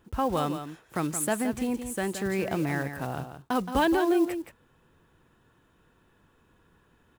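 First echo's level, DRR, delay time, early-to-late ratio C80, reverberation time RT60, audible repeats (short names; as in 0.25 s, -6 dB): -9.5 dB, none, 0.171 s, none, none, 1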